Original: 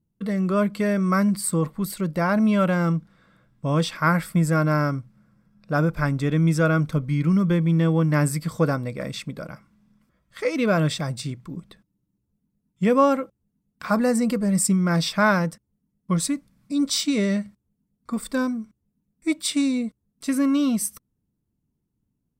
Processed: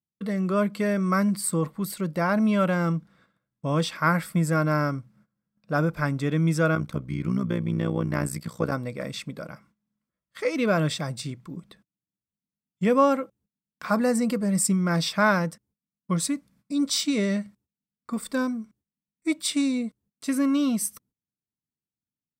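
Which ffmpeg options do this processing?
ffmpeg -i in.wav -filter_complex "[0:a]asettb=1/sr,asplit=3[link_01][link_02][link_03];[link_01]atrim=end=6.754[link_04];[link_02]atrim=start=6.75:end=8.72,asetpts=PTS-STARTPTS,afade=type=in:duration=0.004:curve=qsin,afade=type=out:start_time=1.966:duration=0.004:curve=qsin,tremolo=f=62:d=0.857[link_05];[link_03]atrim=start=8.716[link_06];[link_04][link_05]acrossfade=duration=0.004:curve1=hsin:curve2=qsin[link_07];[link_07][link_06]acrossfade=duration=0.004:curve1=qsin:curve2=hsin,highpass=frequency=120:poles=1,agate=range=-18dB:threshold=-56dB:ratio=16:detection=peak,volume=-1.5dB" out.wav

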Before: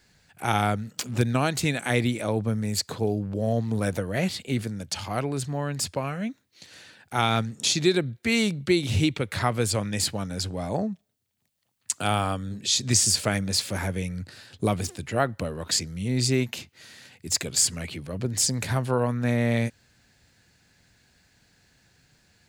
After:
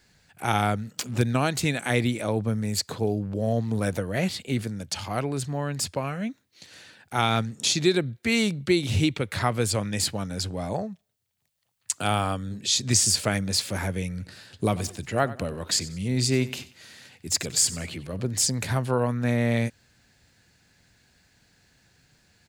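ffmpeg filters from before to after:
ffmpeg -i in.wav -filter_complex "[0:a]asettb=1/sr,asplit=3[link_01][link_02][link_03];[link_01]atrim=end=10.734[link_04];[link_02]atrim=start=10.73:end=11.95,asetpts=PTS-STARTPTS,afade=type=in:duration=0.004:curve=qsin,afade=type=out:start_time=1.216:duration=0.004:curve=qsin,equalizer=frequency=260:width_type=o:width=0.94:gain=-8.5[link_05];[link_03]atrim=start=11.946[link_06];[link_04][link_05]acrossfade=duration=0.004:curve1=hsin:curve2=qsin[link_07];[link_07][link_06]acrossfade=duration=0.004:curve1=qsin:curve2=hsin,asplit=3[link_08][link_09][link_10];[link_08]afade=type=out:start_time=14.17:duration=0.02[link_11];[link_09]aecho=1:1:93|186|279:0.141|0.0466|0.0154,afade=type=in:start_time=14.17:duration=0.02,afade=type=out:start_time=18.3:duration=0.02[link_12];[link_10]afade=type=in:start_time=18.3:duration=0.02[link_13];[link_11][link_12][link_13]amix=inputs=3:normalize=0" out.wav

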